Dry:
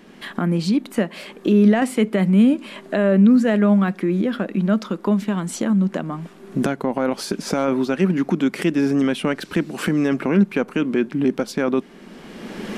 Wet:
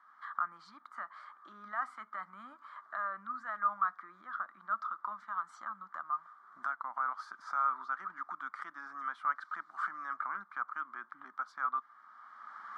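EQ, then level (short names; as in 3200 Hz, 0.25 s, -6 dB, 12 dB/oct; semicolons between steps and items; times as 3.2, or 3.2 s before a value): ladder band-pass 1300 Hz, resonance 80%; fixed phaser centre 1100 Hz, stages 4; 0.0 dB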